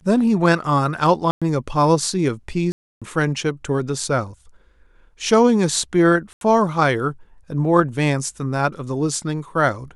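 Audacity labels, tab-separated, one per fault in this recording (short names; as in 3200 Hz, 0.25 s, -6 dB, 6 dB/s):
1.310000	1.420000	gap 0.106 s
2.720000	3.020000	gap 0.296 s
4.000000	4.000000	gap 2.4 ms
6.330000	6.410000	gap 82 ms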